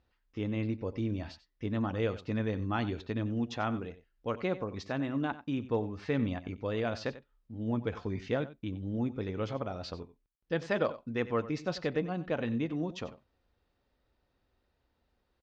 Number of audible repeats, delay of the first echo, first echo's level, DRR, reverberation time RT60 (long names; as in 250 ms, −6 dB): 1, 92 ms, −15.5 dB, no reverb audible, no reverb audible